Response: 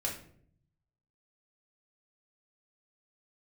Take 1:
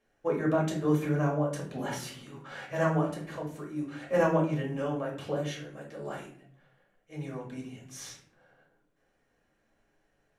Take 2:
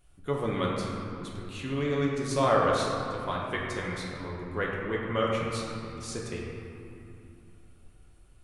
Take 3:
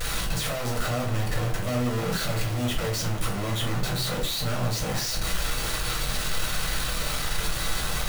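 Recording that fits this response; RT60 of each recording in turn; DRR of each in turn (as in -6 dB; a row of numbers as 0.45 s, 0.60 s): 1; 0.60 s, 2.8 s, 0.40 s; -2.5 dB, -4.0 dB, -3.0 dB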